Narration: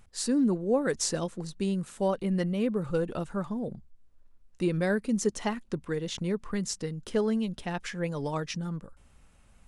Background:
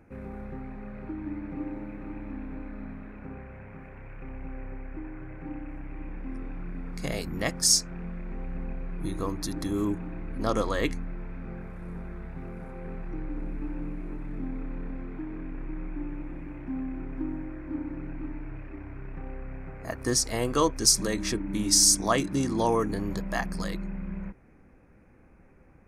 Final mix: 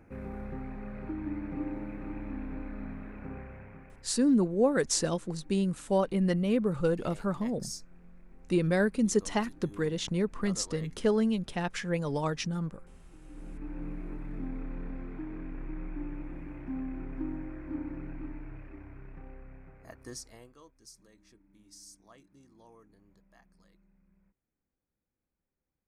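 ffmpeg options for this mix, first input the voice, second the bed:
ffmpeg -i stem1.wav -i stem2.wav -filter_complex "[0:a]adelay=3900,volume=1dB[link_01];[1:a]volume=16dB,afade=type=out:start_time=3.39:duration=0.79:silence=0.112202,afade=type=in:start_time=13.2:duration=0.72:silence=0.149624,afade=type=out:start_time=17.87:duration=2.69:silence=0.0334965[link_02];[link_01][link_02]amix=inputs=2:normalize=0" out.wav

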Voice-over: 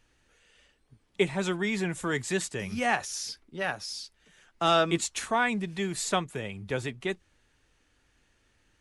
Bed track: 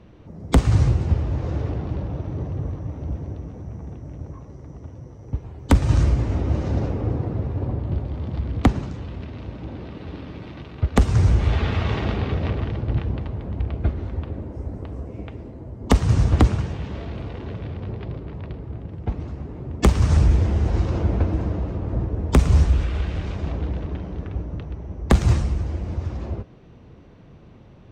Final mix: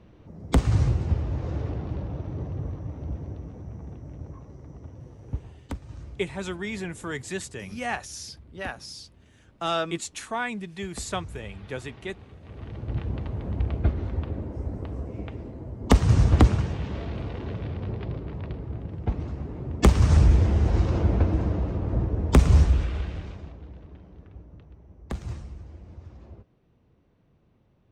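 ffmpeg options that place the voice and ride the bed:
ffmpeg -i stem1.wav -i stem2.wav -filter_complex "[0:a]adelay=5000,volume=-3.5dB[link_01];[1:a]volume=18dB,afade=type=out:start_time=5.34:duration=0.43:silence=0.112202,afade=type=in:start_time=12.45:duration=1.05:silence=0.0749894,afade=type=out:start_time=22.53:duration=1.01:silence=0.158489[link_02];[link_01][link_02]amix=inputs=2:normalize=0" out.wav

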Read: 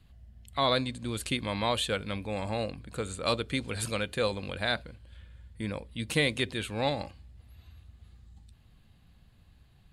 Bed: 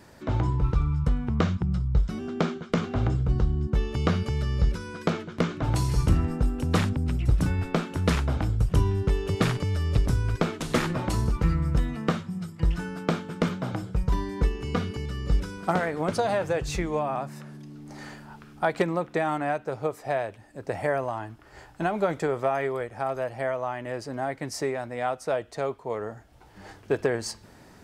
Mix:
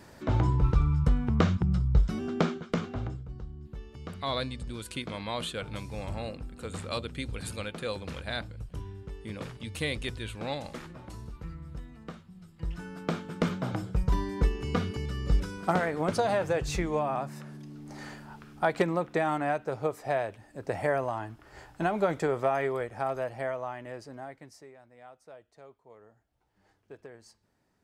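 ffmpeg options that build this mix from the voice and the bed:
ffmpeg -i stem1.wav -i stem2.wav -filter_complex "[0:a]adelay=3650,volume=-5.5dB[link_01];[1:a]volume=16dB,afade=type=out:start_time=2.33:duration=0.92:silence=0.133352,afade=type=in:start_time=12.41:duration=1.19:silence=0.158489,afade=type=out:start_time=22.96:duration=1.66:silence=0.0891251[link_02];[link_01][link_02]amix=inputs=2:normalize=0" out.wav

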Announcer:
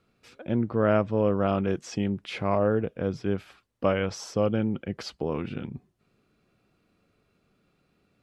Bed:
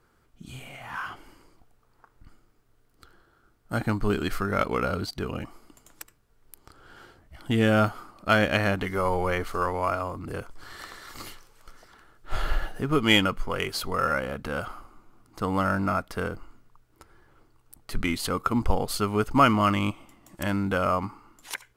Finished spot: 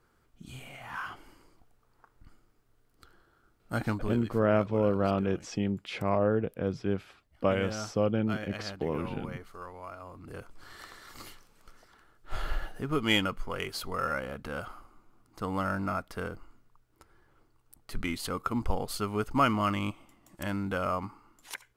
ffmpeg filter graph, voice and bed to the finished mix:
ffmpeg -i stem1.wav -i stem2.wav -filter_complex "[0:a]adelay=3600,volume=-2.5dB[link_01];[1:a]volume=7.5dB,afade=type=out:start_time=3.85:duration=0.42:silence=0.211349,afade=type=in:start_time=9.96:duration=0.64:silence=0.281838[link_02];[link_01][link_02]amix=inputs=2:normalize=0" out.wav

